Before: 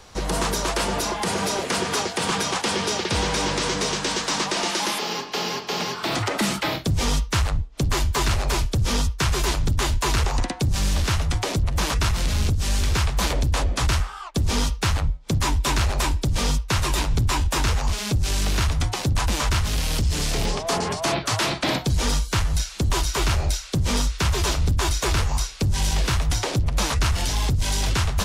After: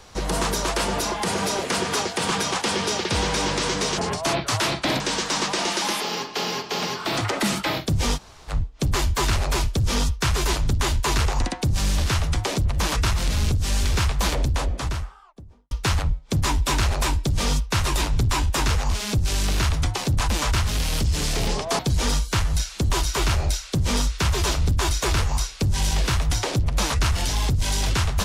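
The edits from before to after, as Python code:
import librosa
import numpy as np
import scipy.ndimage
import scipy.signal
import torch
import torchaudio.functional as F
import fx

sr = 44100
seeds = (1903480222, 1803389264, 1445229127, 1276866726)

y = fx.studio_fade_out(x, sr, start_s=13.22, length_s=1.47)
y = fx.edit(y, sr, fx.room_tone_fill(start_s=7.14, length_s=0.34, crossfade_s=0.06),
    fx.move(start_s=20.77, length_s=1.02, to_s=3.98), tone=tone)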